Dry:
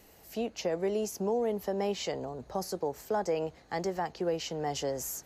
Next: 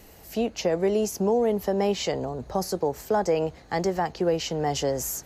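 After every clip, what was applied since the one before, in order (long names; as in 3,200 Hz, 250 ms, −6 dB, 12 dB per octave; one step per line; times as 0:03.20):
low-shelf EQ 140 Hz +6 dB
level +6.5 dB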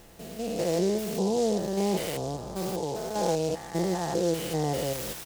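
spectrum averaged block by block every 200 ms
comb filter 5.9 ms, depth 32%
short delay modulated by noise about 5,200 Hz, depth 0.053 ms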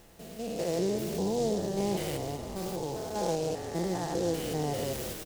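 echo with shifted repeats 194 ms, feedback 60%, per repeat −47 Hz, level −9.5 dB
level −4 dB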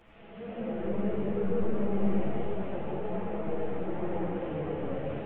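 linear delta modulator 16 kbit/s, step −46.5 dBFS
comb and all-pass reverb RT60 2.9 s, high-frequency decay 0.5×, pre-delay 30 ms, DRR −5.5 dB
string-ensemble chorus
level −3 dB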